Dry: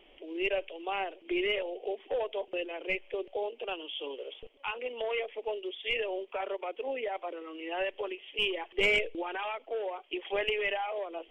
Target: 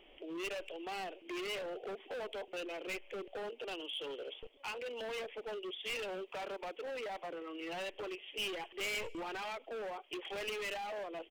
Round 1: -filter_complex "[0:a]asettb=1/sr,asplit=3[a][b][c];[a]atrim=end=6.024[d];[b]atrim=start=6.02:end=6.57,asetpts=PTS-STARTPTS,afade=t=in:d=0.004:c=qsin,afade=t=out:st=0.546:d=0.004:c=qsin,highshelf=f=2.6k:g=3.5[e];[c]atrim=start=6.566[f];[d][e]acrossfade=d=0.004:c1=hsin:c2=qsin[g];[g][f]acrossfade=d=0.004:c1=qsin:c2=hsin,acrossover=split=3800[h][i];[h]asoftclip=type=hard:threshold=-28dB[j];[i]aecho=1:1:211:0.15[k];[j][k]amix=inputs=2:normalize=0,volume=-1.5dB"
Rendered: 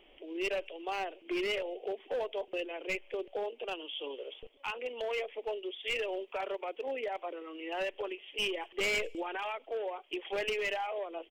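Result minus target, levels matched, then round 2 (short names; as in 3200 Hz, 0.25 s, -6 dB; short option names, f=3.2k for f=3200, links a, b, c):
hard clip: distortion -9 dB
-filter_complex "[0:a]asettb=1/sr,asplit=3[a][b][c];[a]atrim=end=6.024[d];[b]atrim=start=6.02:end=6.57,asetpts=PTS-STARTPTS,afade=t=in:d=0.004:c=qsin,afade=t=out:st=0.546:d=0.004:c=qsin,highshelf=f=2.6k:g=3.5[e];[c]atrim=start=6.566[f];[d][e]acrossfade=d=0.004:c1=hsin:c2=qsin[g];[g][f]acrossfade=d=0.004:c1=qsin:c2=hsin,acrossover=split=3800[h][i];[h]asoftclip=type=hard:threshold=-38dB[j];[i]aecho=1:1:211:0.15[k];[j][k]amix=inputs=2:normalize=0,volume=-1.5dB"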